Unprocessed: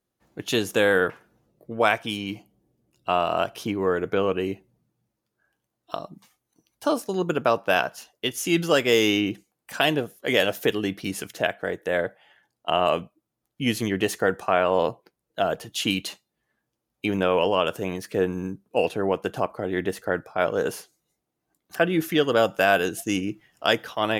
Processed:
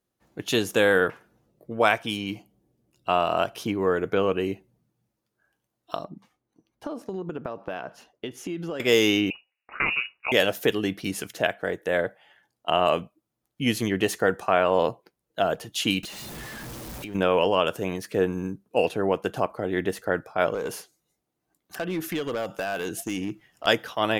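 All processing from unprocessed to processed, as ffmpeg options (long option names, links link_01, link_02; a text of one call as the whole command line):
ffmpeg -i in.wav -filter_complex "[0:a]asettb=1/sr,asplit=3[link_01][link_02][link_03];[link_01]atrim=end=6.044[link_04];[link_02]atrim=start=6.04:end=8.8,asetpts=PTS-STARTPTS,afade=type=in:duration=0.004:curve=qsin,afade=type=out:start_time=2.756:duration=0.004:curve=qsin,lowpass=frequency=1600:poles=1,equalizer=frequency=280:width_type=o:width=1.7:gain=4,acompressor=threshold=-28dB:ratio=12:attack=3.2:release=140:knee=1:detection=peak[link_05];[link_03]atrim=start=8.796[link_06];[link_04][link_05]acrossfade=duration=0.004:curve1=hsin:curve2=qsin[link_07];[link_07][link_06]acrossfade=duration=0.004:curve1=qsin:curve2=hsin,asettb=1/sr,asplit=3[link_08][link_09][link_10];[link_08]atrim=end=9.304[link_11];[link_09]atrim=start=9.3:end=10.32,asetpts=PTS-STARTPTS,afade=type=in:duration=0.004:curve=qsin,afade=type=out:start_time=1.016:duration=0.004:curve=qsin,aeval=exprs='val(0)*sin(2*PI*130*n/s)':channel_layout=same,lowpass=frequency=2500:width_type=q:width=0.5098,lowpass=frequency=2500:width_type=q:width=0.6013,lowpass=frequency=2500:width_type=q:width=0.9,lowpass=frequency=2500:width_type=q:width=2.563,afreqshift=-2900[link_12];[link_10]atrim=start=10.316[link_13];[link_11][link_12]acrossfade=duration=0.004:curve1=hsin:curve2=qsin[link_14];[link_14][link_13]acrossfade=duration=0.004:curve1=qsin:curve2=hsin,asettb=1/sr,asplit=3[link_15][link_16][link_17];[link_15]atrim=end=16.034[link_18];[link_16]atrim=start=16.03:end=17.15,asetpts=PTS-STARTPTS,afade=type=in:duration=0.004:curve=qsin,afade=type=out:start_time=1.116:duration=0.004:curve=qsin,aeval=exprs='val(0)+0.5*0.0224*sgn(val(0))':channel_layout=same,acompressor=threshold=-36dB:ratio=5:attack=3.2:release=140:knee=1:detection=peak,lowshelf=frequency=140:gain=6[link_19];[link_17]atrim=start=17.146[link_20];[link_18][link_19]acrossfade=duration=0.004:curve1=hsin:curve2=qsin[link_21];[link_21][link_20]acrossfade=duration=0.004:curve1=qsin:curve2=hsin,asettb=1/sr,asplit=3[link_22][link_23][link_24];[link_22]atrim=end=20.544[link_25];[link_23]atrim=start=20.54:end=23.67,asetpts=PTS-STARTPTS,afade=type=in:duration=0.004:curve=qsin,afade=type=out:start_time=3.126:duration=0.004:curve=qsin,acompressor=threshold=-24dB:ratio=5:attack=3.2:release=140:knee=1:detection=peak,volume=23.5dB,asoftclip=hard,volume=-23.5dB[link_26];[link_24]atrim=start=23.666[link_27];[link_25][link_26]acrossfade=duration=0.004:curve1=hsin:curve2=qsin[link_28];[link_28][link_27]acrossfade=duration=0.004:curve1=qsin:curve2=hsin" out.wav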